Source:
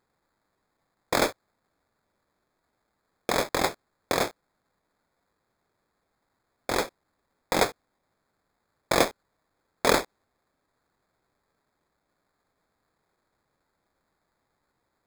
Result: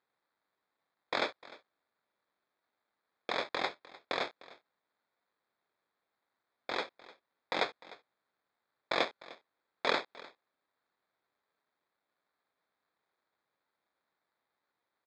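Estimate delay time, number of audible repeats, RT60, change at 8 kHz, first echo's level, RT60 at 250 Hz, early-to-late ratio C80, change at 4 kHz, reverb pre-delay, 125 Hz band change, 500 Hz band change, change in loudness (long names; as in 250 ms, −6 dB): 302 ms, 1, no reverb audible, −23.0 dB, −20.0 dB, no reverb audible, no reverb audible, −6.0 dB, no reverb audible, −18.5 dB, −10.0 dB, −8.5 dB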